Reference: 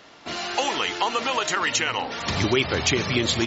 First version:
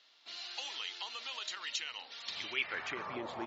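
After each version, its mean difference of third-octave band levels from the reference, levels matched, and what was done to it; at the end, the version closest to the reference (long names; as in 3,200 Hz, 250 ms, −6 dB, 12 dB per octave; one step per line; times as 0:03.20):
8.0 dB: tilt shelving filter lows +3.5 dB, about 1,300 Hz
band-pass filter sweep 4,000 Hz → 880 Hz, 0:02.29–0:03.19
level −5.5 dB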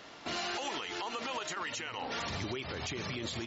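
3.5 dB: downward compressor 3 to 1, threshold −31 dBFS, peak gain reduction 11 dB
brickwall limiter −26 dBFS, peak gain reduction 9 dB
level −2 dB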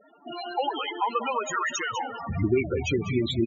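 13.5 dB: spectral peaks only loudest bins 8
single-tap delay 197 ms −12.5 dB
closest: second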